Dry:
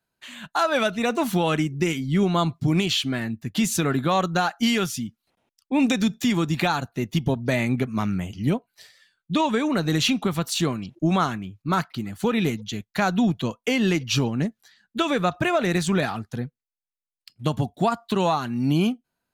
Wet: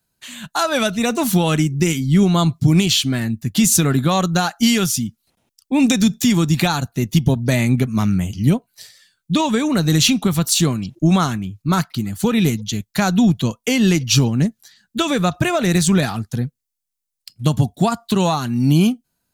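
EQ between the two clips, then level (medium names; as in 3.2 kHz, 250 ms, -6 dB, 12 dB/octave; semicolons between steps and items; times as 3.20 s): tone controls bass +8 dB, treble +11 dB; +2.0 dB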